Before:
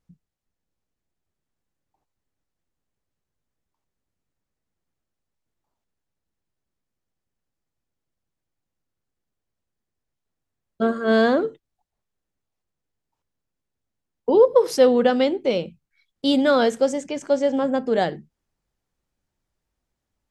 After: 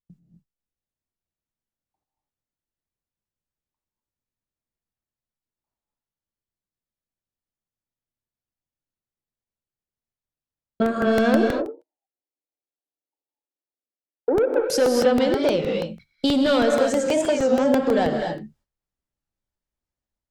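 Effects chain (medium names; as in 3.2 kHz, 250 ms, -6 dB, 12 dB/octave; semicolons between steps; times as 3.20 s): level rider gain up to 9 dB; 11.35–14.70 s: elliptic band-pass 280–820 Hz; saturation -8.5 dBFS, distortion -15 dB; compression, threshold -20 dBFS, peak gain reduction 9 dB; gate -55 dBFS, range -22 dB; gated-style reverb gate 280 ms rising, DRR 2.5 dB; crackling interface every 0.16 s, samples 64, repeat, from 0.46 s; warped record 33 1/3 rpm, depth 160 cents; trim +1.5 dB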